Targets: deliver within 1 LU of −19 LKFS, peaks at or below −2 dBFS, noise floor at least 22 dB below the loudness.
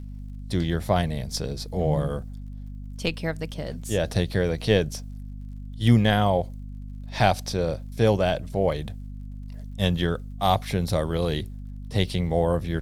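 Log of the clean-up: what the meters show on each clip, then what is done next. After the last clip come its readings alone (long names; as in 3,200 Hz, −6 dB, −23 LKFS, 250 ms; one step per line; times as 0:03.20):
crackle rate 42 per second; mains hum 50 Hz; hum harmonics up to 250 Hz; level of the hum −34 dBFS; integrated loudness −25.0 LKFS; sample peak −4.0 dBFS; target loudness −19.0 LKFS
→ click removal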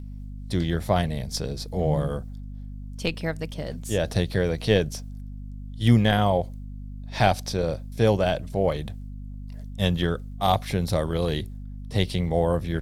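crackle rate 0.31 per second; mains hum 50 Hz; hum harmonics up to 250 Hz; level of the hum −34 dBFS
→ mains-hum notches 50/100/150/200/250 Hz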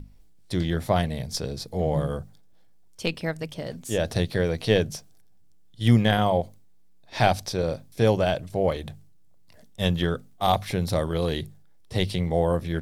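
mains hum none found; integrated loudness −25.5 LKFS; sample peak −4.0 dBFS; target loudness −19.0 LKFS
→ level +6.5 dB
brickwall limiter −2 dBFS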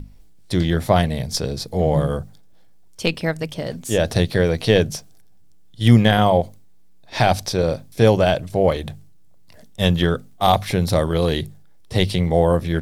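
integrated loudness −19.5 LKFS; sample peak −2.0 dBFS; background noise floor −45 dBFS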